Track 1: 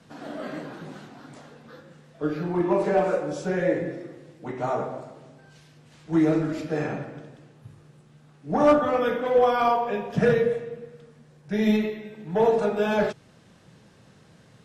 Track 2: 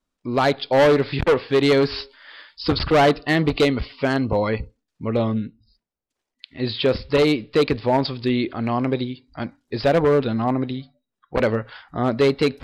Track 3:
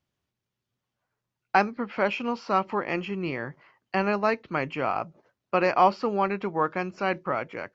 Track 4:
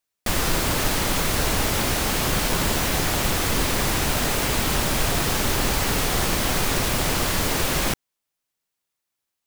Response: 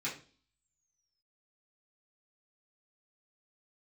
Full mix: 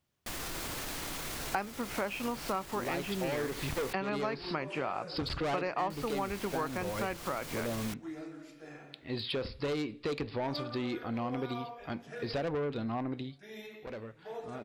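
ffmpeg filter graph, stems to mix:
-filter_complex "[0:a]bass=frequency=250:gain=-6,treble=frequency=4000:gain=-7,adelay=1900,volume=-14dB,asplit=2[link_01][link_02];[link_02]volume=-15dB[link_03];[1:a]asoftclip=type=tanh:threshold=-16dB,adelay=2500,volume=-8dB,afade=type=out:start_time=13.1:duration=0.7:silence=0.251189,asplit=2[link_04][link_05];[link_05]volume=-19dB[link_06];[2:a]volume=0.5dB,asplit=2[link_07][link_08];[3:a]lowpass=frequency=1400:poles=1,volume=-11dB,asplit=3[link_09][link_10][link_11];[link_09]atrim=end=3.93,asetpts=PTS-STARTPTS,afade=type=out:start_time=3.926:duration=0.004:curve=hsin[link_12];[link_10]atrim=start=3.93:end=5.9,asetpts=PTS-STARTPTS,volume=0[link_13];[link_11]atrim=start=5.9,asetpts=PTS-STARTPTS,afade=type=in:duration=0.004:curve=hsin[link_14];[link_12][link_13][link_14]concat=n=3:v=0:a=1,asplit=2[link_15][link_16];[link_16]volume=-18.5dB[link_17];[link_08]apad=whole_len=729579[link_18];[link_01][link_18]sidechaingate=range=-11dB:threshold=-43dB:ratio=16:detection=peak[link_19];[link_19][link_15]amix=inputs=2:normalize=0,crystalizer=i=7:c=0,alimiter=level_in=5.5dB:limit=-24dB:level=0:latency=1,volume=-5.5dB,volume=0dB[link_20];[4:a]atrim=start_sample=2205[link_21];[link_03][link_06][link_17]amix=inputs=3:normalize=0[link_22];[link_22][link_21]afir=irnorm=-1:irlink=0[link_23];[link_04][link_07][link_20][link_23]amix=inputs=4:normalize=0,acompressor=threshold=-32dB:ratio=4"

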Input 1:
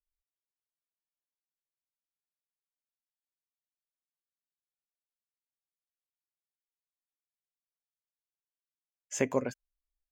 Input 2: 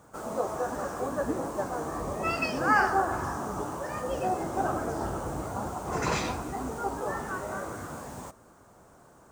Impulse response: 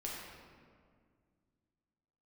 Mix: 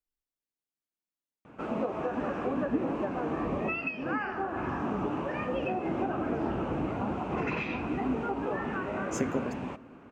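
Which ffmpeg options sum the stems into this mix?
-filter_complex "[0:a]acompressor=threshold=-30dB:ratio=6,volume=-4dB,asplit=2[link_01][link_02];[link_02]volume=-14dB[link_03];[1:a]lowpass=frequency=2600:width_type=q:width=5.7,acompressor=threshold=-30dB:ratio=10,adelay=1450,volume=-2dB[link_04];[2:a]atrim=start_sample=2205[link_05];[link_03][link_05]afir=irnorm=-1:irlink=0[link_06];[link_01][link_04][link_06]amix=inputs=3:normalize=0,equalizer=frequency=250:width=0.79:gain=11"

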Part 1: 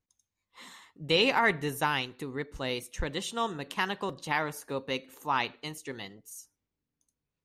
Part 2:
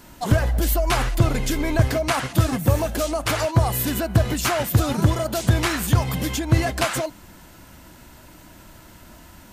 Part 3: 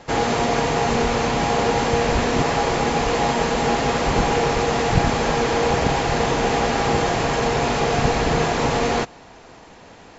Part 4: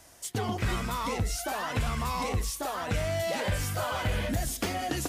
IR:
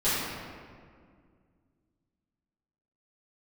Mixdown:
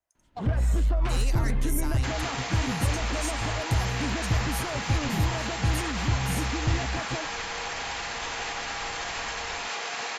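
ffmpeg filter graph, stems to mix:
-filter_complex "[0:a]asplit=2[link_01][link_02];[link_02]highpass=frequency=720:poles=1,volume=9dB,asoftclip=type=tanh:threshold=-12dB[link_03];[link_01][link_03]amix=inputs=2:normalize=0,lowpass=frequency=3800:poles=1,volume=-6dB,aexciter=amount=10.2:drive=8.7:freq=5100,volume=-8.5dB[link_04];[1:a]lowpass=3000,dynaudnorm=framelen=120:gausssize=3:maxgain=6.5dB,asoftclip=type=tanh:threshold=-12.5dB,adelay=150,volume=-8.5dB[link_05];[2:a]highpass=1300,alimiter=limit=-21.5dB:level=0:latency=1:release=99,acontrast=86,adelay=1950,volume=-1.5dB[link_06];[3:a]acrossover=split=540 3500:gain=0.2 1 0.0794[link_07][link_08][link_09];[link_07][link_08][link_09]amix=inputs=3:normalize=0,acrossover=split=580[link_10][link_11];[link_10]aeval=exprs='val(0)*(1-0.7/2+0.7/2*cos(2*PI*2.3*n/s))':channel_layout=same[link_12];[link_11]aeval=exprs='val(0)*(1-0.7/2-0.7/2*cos(2*PI*2.3*n/s))':channel_layout=same[link_13];[link_12][link_13]amix=inputs=2:normalize=0,volume=-7.5dB[link_14];[link_04][link_05][link_06][link_14]amix=inputs=4:normalize=0,agate=range=-15dB:threshold=-41dB:ratio=16:detection=peak,lowshelf=frequency=62:gain=7.5,acrossover=split=330[link_15][link_16];[link_16]acompressor=threshold=-45dB:ratio=1.5[link_17];[link_15][link_17]amix=inputs=2:normalize=0"

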